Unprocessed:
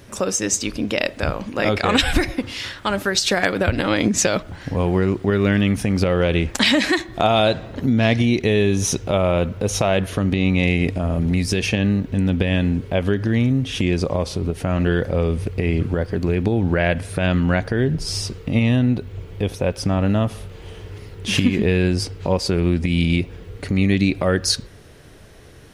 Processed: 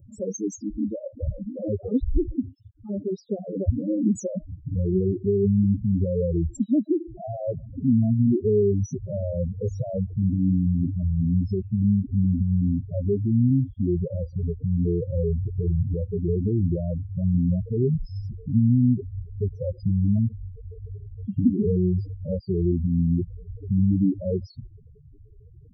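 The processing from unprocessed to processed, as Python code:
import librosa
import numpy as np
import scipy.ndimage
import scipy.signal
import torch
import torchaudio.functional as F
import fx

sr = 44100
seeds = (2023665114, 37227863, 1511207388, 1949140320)

y = fx.spec_topn(x, sr, count=4)
y = scipy.signal.sosfilt(scipy.signal.cheby1(3, 1.0, [460.0, 8100.0], 'bandstop', fs=sr, output='sos'), y)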